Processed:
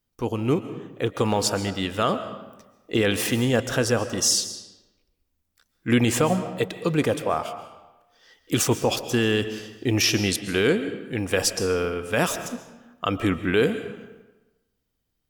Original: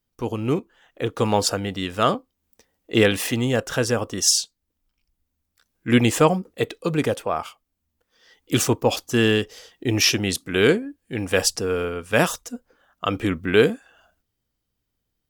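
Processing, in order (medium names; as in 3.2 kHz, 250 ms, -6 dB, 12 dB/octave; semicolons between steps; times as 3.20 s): peak limiter -10.5 dBFS, peak gain reduction 7.5 dB; reverberation RT60 1.1 s, pre-delay 95 ms, DRR 11 dB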